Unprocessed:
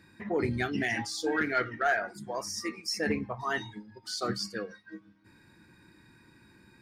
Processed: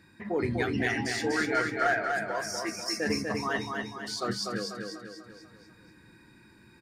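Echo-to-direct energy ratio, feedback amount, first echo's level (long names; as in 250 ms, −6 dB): −3.0 dB, 49%, −4.0 dB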